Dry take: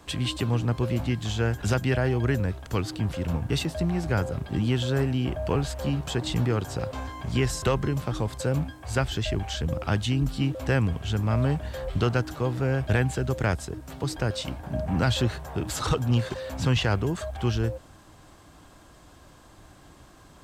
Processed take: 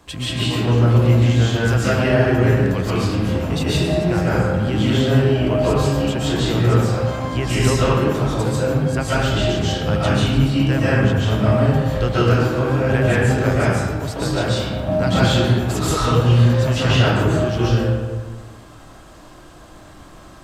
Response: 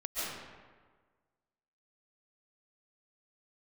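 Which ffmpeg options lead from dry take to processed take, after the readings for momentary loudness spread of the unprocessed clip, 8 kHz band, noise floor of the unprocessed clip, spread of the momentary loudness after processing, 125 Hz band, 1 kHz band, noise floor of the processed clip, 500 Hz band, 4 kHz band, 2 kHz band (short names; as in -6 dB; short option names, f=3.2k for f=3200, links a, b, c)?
6 LU, +7.0 dB, -52 dBFS, 6 LU, +9.5 dB, +10.0 dB, -42 dBFS, +10.5 dB, +8.5 dB, +9.0 dB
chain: -filter_complex "[1:a]atrim=start_sample=2205[a];[0:a][a]afir=irnorm=-1:irlink=0,volume=4.5dB"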